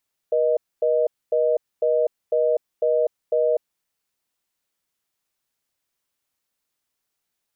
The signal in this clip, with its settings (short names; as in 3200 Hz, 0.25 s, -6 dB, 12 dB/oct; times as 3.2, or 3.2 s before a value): call progress tone reorder tone, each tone -19.5 dBFS 3.42 s